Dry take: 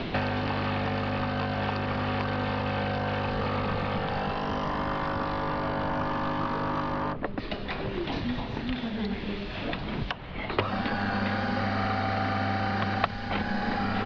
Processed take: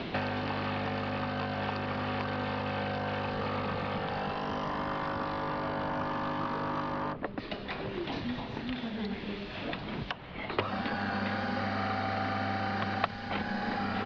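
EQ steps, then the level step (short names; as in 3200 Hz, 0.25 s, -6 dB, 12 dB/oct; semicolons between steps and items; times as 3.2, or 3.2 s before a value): low shelf 61 Hz -12 dB; -3.5 dB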